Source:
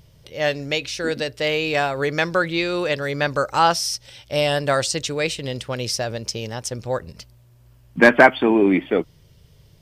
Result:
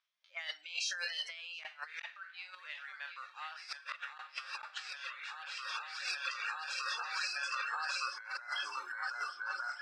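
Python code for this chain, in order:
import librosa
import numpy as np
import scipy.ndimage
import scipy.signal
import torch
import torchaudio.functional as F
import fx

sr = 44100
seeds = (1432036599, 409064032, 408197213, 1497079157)

p1 = fx.spec_trails(x, sr, decay_s=0.67)
p2 = fx.doppler_pass(p1, sr, speed_mps=29, closest_m=16.0, pass_at_s=2.79)
p3 = p2 + fx.echo_swing(p2, sr, ms=1211, ratio=1.5, feedback_pct=59, wet_db=-7.5, dry=0)
p4 = fx.mod_noise(p3, sr, seeds[0], snr_db=22)
p5 = np.clip(p4, -10.0 ** (-14.5 / 20.0), 10.0 ** (-14.5 / 20.0))
p6 = p4 + (p5 * 10.0 ** (-10.0 / 20.0))
p7 = fx.noise_reduce_blind(p6, sr, reduce_db=20)
p8 = fx.gate_flip(p7, sr, shuts_db=-12.0, range_db=-32)
p9 = scipy.signal.sosfilt(scipy.signal.butter(2, 3500.0, 'lowpass', fs=sr, output='sos'), p8)
p10 = fx.rev_schroeder(p9, sr, rt60_s=0.31, comb_ms=27, drr_db=14.0)
p11 = fx.dereverb_blind(p10, sr, rt60_s=0.74)
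p12 = scipy.signal.sosfilt(scipy.signal.butter(4, 1200.0, 'highpass', fs=sr, output='sos'), p11)
p13 = fx.over_compress(p12, sr, threshold_db=-46.0, ratio=-1.0)
y = p13 * 10.0 ** (4.0 / 20.0)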